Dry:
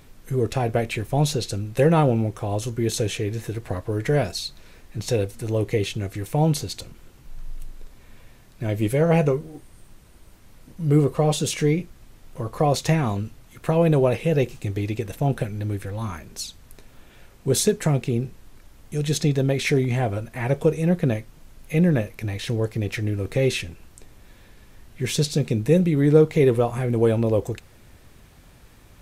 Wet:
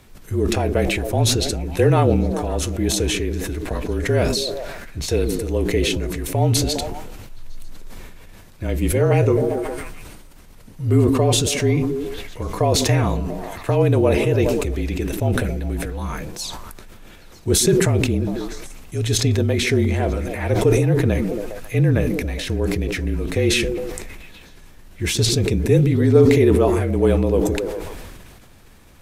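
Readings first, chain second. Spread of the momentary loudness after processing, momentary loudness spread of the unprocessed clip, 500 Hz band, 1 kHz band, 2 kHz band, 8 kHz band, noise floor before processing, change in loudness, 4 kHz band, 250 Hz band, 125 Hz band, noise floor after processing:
13 LU, 13 LU, +3.0 dB, +2.0 dB, +5.0 dB, +7.0 dB, -50 dBFS, +3.5 dB, +7.0 dB, +3.0 dB, +3.0 dB, -44 dBFS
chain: delay with a stepping band-pass 0.136 s, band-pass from 270 Hz, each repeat 0.7 oct, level -8 dB; frequency shift -34 Hz; sustainer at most 29 dB/s; gain +1.5 dB

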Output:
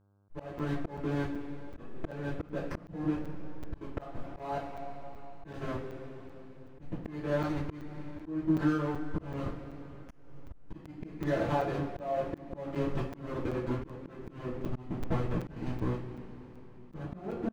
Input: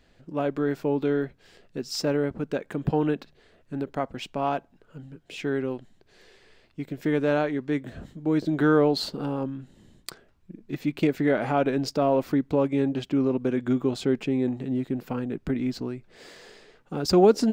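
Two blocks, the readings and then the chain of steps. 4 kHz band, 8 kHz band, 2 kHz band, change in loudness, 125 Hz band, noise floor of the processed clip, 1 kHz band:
-17.0 dB, under -15 dB, -9.0 dB, -10.0 dB, -4.5 dB, -51 dBFS, -8.0 dB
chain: steep low-pass 2700 Hz 96 dB/oct; comb 5.8 ms, depth 68%; de-hum 135.9 Hz, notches 8; backlash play -22.5 dBFS; compressor 20:1, threshold -34 dBFS, peak gain reduction 24 dB; two-slope reverb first 0.29 s, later 4 s, from -20 dB, DRR -8.5 dB; buzz 100 Hz, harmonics 16, -68 dBFS -7 dB/oct; auto swell 0.285 s; crackling interface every 0.38 s, samples 256, zero, from 0.59

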